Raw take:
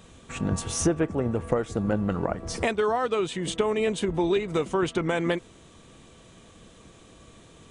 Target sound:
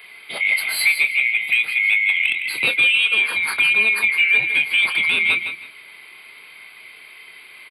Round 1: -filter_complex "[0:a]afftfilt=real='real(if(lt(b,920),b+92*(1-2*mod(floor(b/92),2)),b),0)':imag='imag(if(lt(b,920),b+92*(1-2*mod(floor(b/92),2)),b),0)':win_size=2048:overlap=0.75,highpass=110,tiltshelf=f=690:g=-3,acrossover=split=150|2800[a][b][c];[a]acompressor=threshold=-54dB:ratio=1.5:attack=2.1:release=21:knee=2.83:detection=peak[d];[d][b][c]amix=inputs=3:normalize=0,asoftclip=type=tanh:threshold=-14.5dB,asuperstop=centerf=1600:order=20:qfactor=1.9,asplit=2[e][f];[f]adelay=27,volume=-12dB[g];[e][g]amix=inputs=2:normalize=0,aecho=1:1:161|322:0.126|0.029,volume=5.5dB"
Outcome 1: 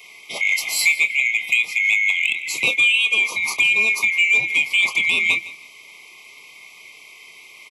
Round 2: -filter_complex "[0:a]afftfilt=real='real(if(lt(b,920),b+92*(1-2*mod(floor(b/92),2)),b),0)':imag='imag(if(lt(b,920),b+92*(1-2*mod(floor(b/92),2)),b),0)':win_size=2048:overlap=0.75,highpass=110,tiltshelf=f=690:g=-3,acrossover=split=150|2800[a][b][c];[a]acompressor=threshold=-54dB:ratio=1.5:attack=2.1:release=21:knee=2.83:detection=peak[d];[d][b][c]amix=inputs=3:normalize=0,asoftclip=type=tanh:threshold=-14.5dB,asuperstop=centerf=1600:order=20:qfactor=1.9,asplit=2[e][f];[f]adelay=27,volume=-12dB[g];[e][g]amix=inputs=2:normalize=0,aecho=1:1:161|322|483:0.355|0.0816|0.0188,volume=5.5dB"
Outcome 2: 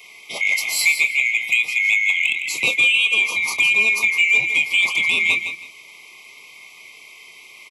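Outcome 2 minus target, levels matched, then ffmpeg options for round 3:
8000 Hz band +5.5 dB
-filter_complex "[0:a]afftfilt=real='real(if(lt(b,920),b+92*(1-2*mod(floor(b/92),2)),b),0)':imag='imag(if(lt(b,920),b+92*(1-2*mod(floor(b/92),2)),b),0)':win_size=2048:overlap=0.75,highpass=110,tiltshelf=f=690:g=-3,acrossover=split=150|2800[a][b][c];[a]acompressor=threshold=-54dB:ratio=1.5:attack=2.1:release=21:knee=2.83:detection=peak[d];[d][b][c]amix=inputs=3:normalize=0,asoftclip=type=tanh:threshold=-14.5dB,asuperstop=centerf=6300:order=20:qfactor=1.9,asplit=2[e][f];[f]adelay=27,volume=-12dB[g];[e][g]amix=inputs=2:normalize=0,aecho=1:1:161|322|483:0.355|0.0816|0.0188,volume=5.5dB"

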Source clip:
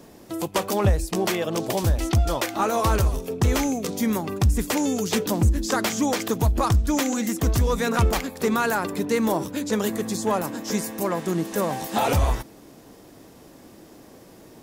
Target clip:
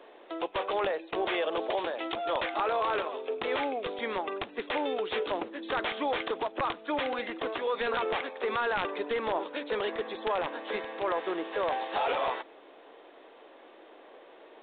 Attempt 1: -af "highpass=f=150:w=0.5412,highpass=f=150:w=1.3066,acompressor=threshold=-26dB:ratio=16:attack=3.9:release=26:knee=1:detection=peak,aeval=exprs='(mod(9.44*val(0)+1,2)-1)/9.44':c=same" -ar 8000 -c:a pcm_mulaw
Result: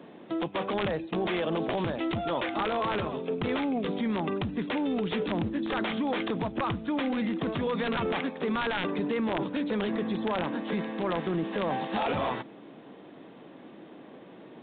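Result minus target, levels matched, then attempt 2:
125 Hz band +16.0 dB
-af "highpass=f=420:w=0.5412,highpass=f=420:w=1.3066,acompressor=threshold=-26dB:ratio=16:attack=3.9:release=26:knee=1:detection=peak,aeval=exprs='(mod(9.44*val(0)+1,2)-1)/9.44':c=same" -ar 8000 -c:a pcm_mulaw

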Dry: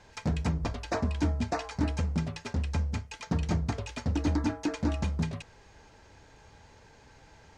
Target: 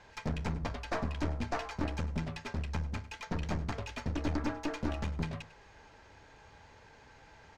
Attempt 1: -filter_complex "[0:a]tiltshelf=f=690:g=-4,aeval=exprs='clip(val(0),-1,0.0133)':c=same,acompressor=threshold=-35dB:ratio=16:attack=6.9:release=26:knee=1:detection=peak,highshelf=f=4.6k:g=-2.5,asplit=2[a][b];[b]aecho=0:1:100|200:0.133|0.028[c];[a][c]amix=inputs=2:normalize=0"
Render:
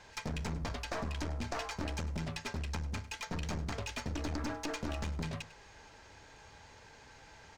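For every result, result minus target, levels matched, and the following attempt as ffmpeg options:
compressor: peak gain reduction +8.5 dB; 8000 Hz band +8.0 dB
-filter_complex "[0:a]tiltshelf=f=690:g=-4,aeval=exprs='clip(val(0),-1,0.0133)':c=same,highshelf=f=4.6k:g=-2.5,asplit=2[a][b];[b]aecho=0:1:100|200:0.133|0.028[c];[a][c]amix=inputs=2:normalize=0"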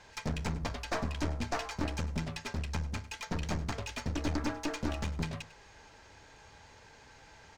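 8000 Hz band +7.0 dB
-filter_complex "[0:a]tiltshelf=f=690:g=-4,aeval=exprs='clip(val(0),-1,0.0133)':c=same,highshelf=f=4.6k:g=-13.5,asplit=2[a][b];[b]aecho=0:1:100|200:0.133|0.028[c];[a][c]amix=inputs=2:normalize=0"

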